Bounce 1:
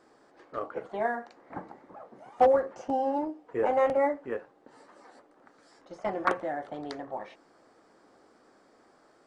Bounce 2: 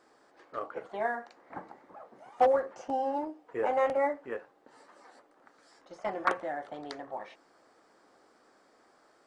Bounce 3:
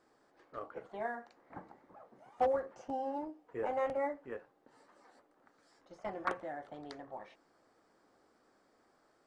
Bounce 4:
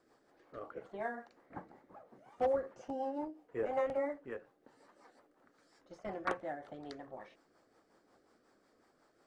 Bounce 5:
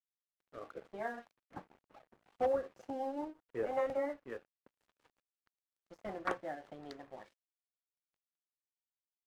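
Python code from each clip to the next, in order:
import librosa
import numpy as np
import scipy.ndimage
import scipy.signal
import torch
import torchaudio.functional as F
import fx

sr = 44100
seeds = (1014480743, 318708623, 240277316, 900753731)

y1 = fx.low_shelf(x, sr, hz=450.0, db=-7.5)
y2 = fx.low_shelf(y1, sr, hz=190.0, db=11.0)
y2 = F.gain(torch.from_numpy(y2), -8.0).numpy()
y3 = fx.rotary(y2, sr, hz=5.5)
y3 = F.gain(torch.from_numpy(y3), 2.5).numpy()
y4 = np.sign(y3) * np.maximum(np.abs(y3) - 10.0 ** (-58.5 / 20.0), 0.0)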